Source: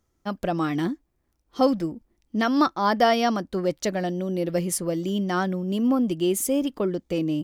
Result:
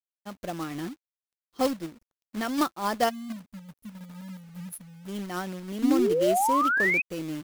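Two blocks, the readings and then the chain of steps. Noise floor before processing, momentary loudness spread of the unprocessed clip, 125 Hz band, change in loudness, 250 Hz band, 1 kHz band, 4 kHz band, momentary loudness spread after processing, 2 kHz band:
-72 dBFS, 9 LU, -9.5 dB, -2.0 dB, -6.0 dB, -2.0 dB, -6.0 dB, 20 LU, +4.0 dB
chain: spectral delete 3.09–5.08, 260–9400 Hz; companded quantiser 4-bit; painted sound rise, 5.82–7.02, 250–2600 Hz -18 dBFS; upward expander 1.5:1, over -33 dBFS; gain -4.5 dB

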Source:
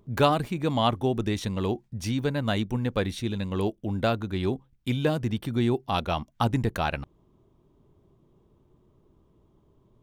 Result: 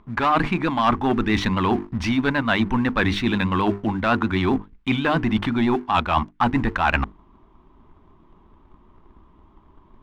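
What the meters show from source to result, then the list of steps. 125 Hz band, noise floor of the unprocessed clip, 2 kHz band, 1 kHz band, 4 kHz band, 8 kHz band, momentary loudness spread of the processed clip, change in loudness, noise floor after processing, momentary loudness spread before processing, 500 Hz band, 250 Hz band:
+1.5 dB, -64 dBFS, +12.0 dB, +8.0 dB, +4.0 dB, n/a, 3 LU, +6.0 dB, -55 dBFS, 6 LU, +1.5 dB, +7.0 dB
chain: vibrato 7.8 Hz 55 cents; notches 50/100/150/200/250/300/350/400/450 Hz; in parallel at -2 dB: overloaded stage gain 19.5 dB; on the sum: LPF 3200 Hz 12 dB/oct; low shelf 83 Hz +7 dB; sample leveller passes 1; ten-band EQ 125 Hz -12 dB, 250 Hz +4 dB, 500 Hz -10 dB, 1000 Hz +9 dB, 2000 Hz +5 dB; reverse; compressor 5:1, threshold -24 dBFS, peak gain reduction 14 dB; reverse; gain +6.5 dB

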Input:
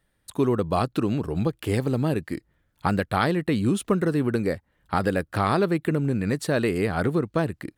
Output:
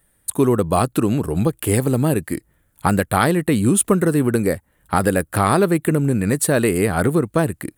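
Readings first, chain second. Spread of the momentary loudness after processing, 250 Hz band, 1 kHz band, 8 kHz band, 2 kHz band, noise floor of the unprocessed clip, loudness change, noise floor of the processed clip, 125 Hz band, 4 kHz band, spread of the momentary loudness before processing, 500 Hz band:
6 LU, +6.0 dB, +6.0 dB, +17.5 dB, +5.5 dB, -71 dBFS, +6.0 dB, -63 dBFS, +6.0 dB, +4.0 dB, 6 LU, +6.0 dB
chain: resonant high shelf 6900 Hz +11 dB, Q 1.5; gain +6 dB

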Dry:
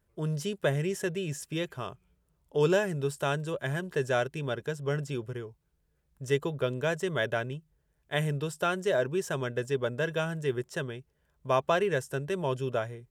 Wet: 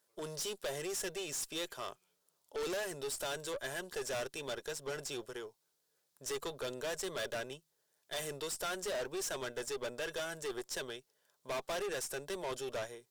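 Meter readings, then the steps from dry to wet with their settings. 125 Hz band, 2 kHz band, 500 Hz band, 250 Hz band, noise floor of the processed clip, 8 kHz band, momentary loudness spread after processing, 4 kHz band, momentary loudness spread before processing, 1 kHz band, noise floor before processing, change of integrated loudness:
-21.0 dB, -8.5 dB, -10.0 dB, -13.0 dB, -80 dBFS, +3.5 dB, 7 LU, -1.5 dB, 9 LU, -9.5 dB, -74 dBFS, -9.0 dB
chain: HPF 480 Hz 12 dB/oct; resonant high shelf 3200 Hz +7 dB, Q 1.5; tube stage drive 37 dB, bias 0.4; gain +2 dB

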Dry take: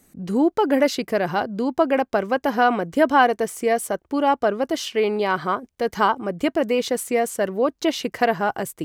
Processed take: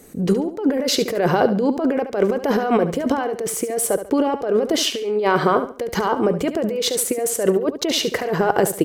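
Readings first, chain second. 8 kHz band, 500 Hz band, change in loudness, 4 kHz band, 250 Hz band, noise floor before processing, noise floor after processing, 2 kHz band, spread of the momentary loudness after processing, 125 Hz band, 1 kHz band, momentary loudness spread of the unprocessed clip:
+9.5 dB, +2.0 dB, +1.5 dB, +6.5 dB, +2.5 dB, -67 dBFS, -34 dBFS, -2.5 dB, 4 LU, +8.0 dB, -2.5 dB, 5 LU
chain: bell 450 Hz +10.5 dB 0.65 oct; negative-ratio compressor -22 dBFS, ratio -1; on a send: feedback echo 71 ms, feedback 31%, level -11 dB; on the sum: gain +2.5 dB

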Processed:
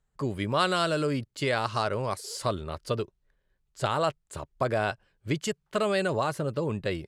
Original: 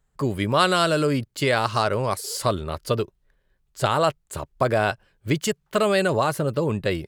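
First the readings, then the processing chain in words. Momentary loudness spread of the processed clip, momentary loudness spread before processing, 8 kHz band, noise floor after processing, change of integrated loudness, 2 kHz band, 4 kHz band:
7 LU, 7 LU, -7.5 dB, -76 dBFS, -6.0 dB, -6.0 dB, -6.0 dB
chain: LPF 9600 Hz 12 dB/oct; gain -6 dB

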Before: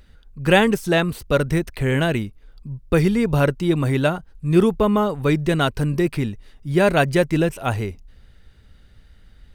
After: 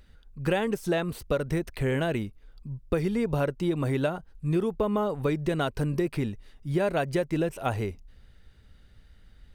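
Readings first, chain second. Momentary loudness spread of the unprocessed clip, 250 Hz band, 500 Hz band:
11 LU, -8.5 dB, -7.5 dB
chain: dynamic EQ 550 Hz, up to +5 dB, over -30 dBFS, Q 0.74; compressor 6:1, threshold -18 dBFS, peak gain reduction 11.5 dB; gain -5 dB

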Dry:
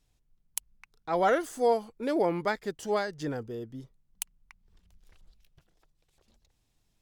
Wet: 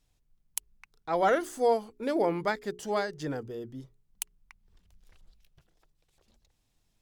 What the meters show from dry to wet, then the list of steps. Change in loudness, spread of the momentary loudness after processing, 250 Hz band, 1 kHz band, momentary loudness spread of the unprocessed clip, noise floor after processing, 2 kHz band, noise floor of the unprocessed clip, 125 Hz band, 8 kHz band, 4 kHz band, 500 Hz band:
0.0 dB, 14 LU, -0.5 dB, 0.0 dB, 14 LU, -74 dBFS, 0.0 dB, -74 dBFS, -1.0 dB, 0.0 dB, 0.0 dB, 0.0 dB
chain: notches 60/120/180/240/300/360/420 Hz

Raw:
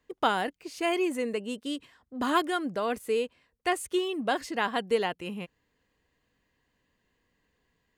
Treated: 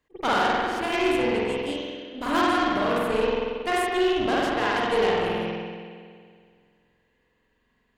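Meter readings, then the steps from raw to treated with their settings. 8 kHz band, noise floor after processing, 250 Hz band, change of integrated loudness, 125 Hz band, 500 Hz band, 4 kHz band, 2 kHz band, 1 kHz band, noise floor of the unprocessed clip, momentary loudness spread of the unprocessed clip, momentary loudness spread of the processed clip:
+0.5 dB, -70 dBFS, +5.5 dB, +5.5 dB, +9.5 dB, +6.0 dB, +5.5 dB, +6.5 dB, +6.0 dB, -76 dBFS, 10 LU, 10 LU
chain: spring tank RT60 2.1 s, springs 46 ms, chirp 45 ms, DRR -7 dB; added harmonics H 8 -20 dB, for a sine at -7.5 dBFS; attack slew limiter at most 470 dB/s; gain -2.5 dB

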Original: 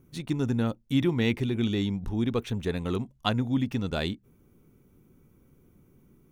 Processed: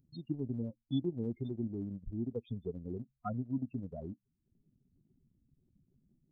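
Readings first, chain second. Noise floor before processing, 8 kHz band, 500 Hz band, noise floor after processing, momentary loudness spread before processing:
-62 dBFS, n/a, -11.0 dB, -83 dBFS, 5 LU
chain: loudest bins only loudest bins 8; transient shaper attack +4 dB, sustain -10 dB; pre-emphasis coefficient 0.8; gain +3 dB

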